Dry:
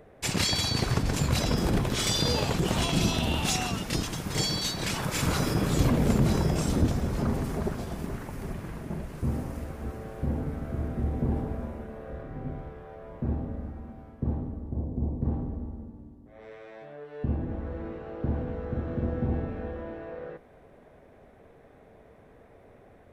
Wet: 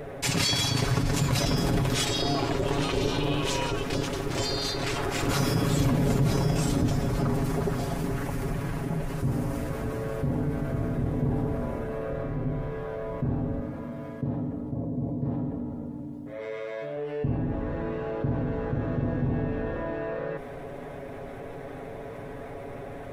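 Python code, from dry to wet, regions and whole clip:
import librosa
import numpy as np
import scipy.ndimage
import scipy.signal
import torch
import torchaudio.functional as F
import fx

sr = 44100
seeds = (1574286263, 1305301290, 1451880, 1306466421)

y = fx.chain(x, sr, fx.high_shelf(hz=4600.0, db=-9.5),
    fx.ring_mod(carrier_hz=220.0), at=(2.04, 5.29))
y = fx.chain(y, sr, fx.highpass(hz=190.0, slope=6),
    fx.peak_eq(hz=890.0, db=-4.5, octaves=0.22),
    fx.notch_comb(f0_hz=380.0), at=(13.6, 16.97))
y = y + 0.67 * np.pad(y, (int(7.2 * sr / 1000.0), 0))[:len(y)]
y = fx.env_flatten(y, sr, amount_pct=50)
y = F.gain(torch.from_numpy(y), -4.0).numpy()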